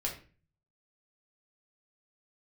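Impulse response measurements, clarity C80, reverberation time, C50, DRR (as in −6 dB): 13.0 dB, 0.35 s, 8.0 dB, −2.0 dB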